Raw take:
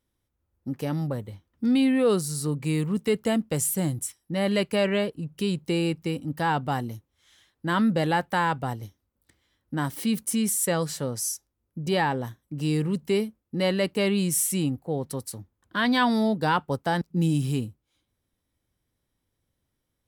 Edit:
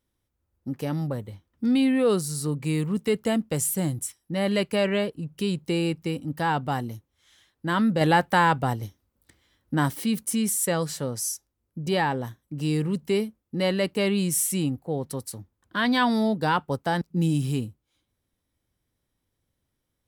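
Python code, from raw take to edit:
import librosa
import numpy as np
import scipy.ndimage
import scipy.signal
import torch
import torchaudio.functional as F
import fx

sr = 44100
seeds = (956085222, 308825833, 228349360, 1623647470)

y = fx.edit(x, sr, fx.clip_gain(start_s=8.01, length_s=1.92, db=4.5), tone=tone)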